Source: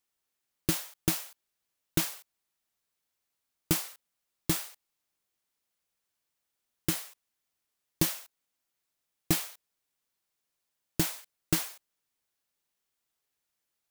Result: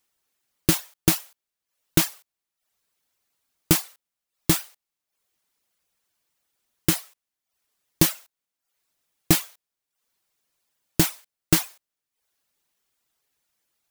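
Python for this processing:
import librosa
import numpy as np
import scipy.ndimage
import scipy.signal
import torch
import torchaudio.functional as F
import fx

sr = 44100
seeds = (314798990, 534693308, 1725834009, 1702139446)

y = fx.dereverb_blind(x, sr, rt60_s=0.59)
y = y * librosa.db_to_amplitude(8.5)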